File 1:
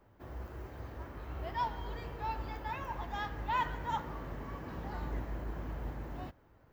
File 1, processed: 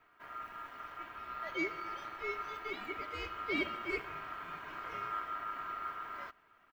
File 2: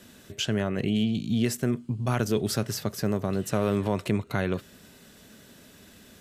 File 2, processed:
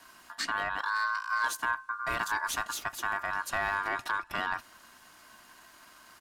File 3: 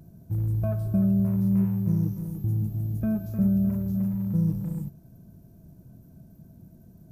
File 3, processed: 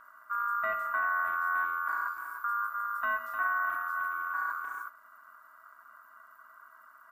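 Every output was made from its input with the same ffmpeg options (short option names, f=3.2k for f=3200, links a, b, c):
-af "asoftclip=type=tanh:threshold=-17dB,aecho=1:1:3.2:0.48,aeval=exprs='val(0)*sin(2*PI*1300*n/s)':c=same,volume=-1dB"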